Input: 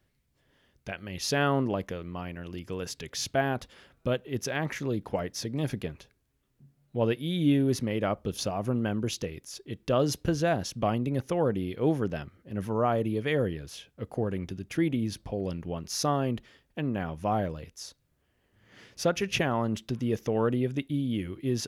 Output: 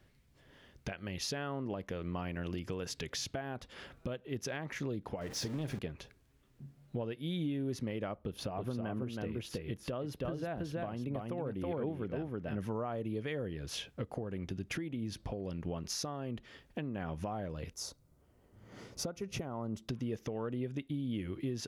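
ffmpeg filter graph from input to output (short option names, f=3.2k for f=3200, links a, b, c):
-filter_complex "[0:a]asettb=1/sr,asplit=3[a][b][c];[a]atrim=end=5.214[d];[b]atrim=start=5.21:end=5.79,asetpts=PTS-STARTPTS,afade=t=in:d=0.004:c=qsin,afade=t=out:st=0.576:d=0.004:c=qsin,aeval=exprs='val(0)+0.5*0.015*sgn(val(0))':c=same,asplit=2[e][f];[f]adelay=46,volume=-13dB[g];[e][g]amix=inputs=2:normalize=0,atrim=end_sample=25578[h];[c]atrim=start=5.786[i];[d][h]acrossfade=d=0.004:c1=hsin:c2=qsin[j];[j][i]acrossfade=d=0.004:c1=qsin:c2=hsin,asettb=1/sr,asplit=3[k][l][m];[k]atrim=end=8.174[n];[l]atrim=start=8.17:end=12.59,asetpts=PTS-STARTPTS,afade=t=in:d=0.004:c=qsin,afade=t=out:st=4.416:d=0.004:c=qsin,equalizer=f=6.3k:w=1.1:g=-11.5,aecho=1:1:323:0.631,atrim=end_sample=194922[o];[m]atrim=start=12.586[p];[n][o]acrossfade=d=0.004:c1=hsin:c2=qsin[q];[q][p]acrossfade=d=0.004:c1=qsin:c2=hsin,asettb=1/sr,asplit=3[r][s][t];[r]atrim=end=17.734[u];[s]atrim=start=17.73:end=19.89,asetpts=PTS-STARTPTS,afade=t=in:d=0.004:c=qsin,afade=t=out:st=2.156:d=0.004:c=qsin,equalizer=f=2.8k:t=o:w=1.4:g=-12,bandreject=f=1.7k:w=5.8[v];[t]atrim=start=19.886[w];[u][v]acrossfade=d=0.004:c1=hsin:c2=qsin[x];[x][w]acrossfade=d=0.004:c1=qsin:c2=hsin,highshelf=f=7.8k:g=-7,acompressor=threshold=-40dB:ratio=8,alimiter=level_in=10dB:limit=-24dB:level=0:latency=1:release=369,volume=-10dB,volume=6.5dB"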